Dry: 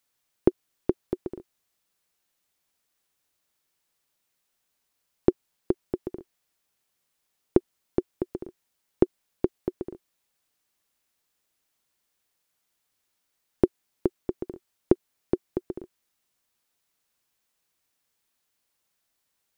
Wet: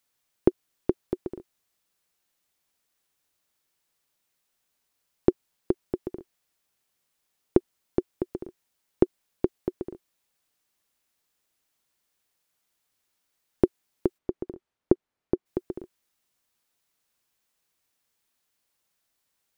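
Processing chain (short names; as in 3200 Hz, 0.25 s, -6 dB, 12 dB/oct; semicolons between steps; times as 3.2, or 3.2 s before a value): 14.17–15.45 LPF 1600 Hz -> 1300 Hz 6 dB/oct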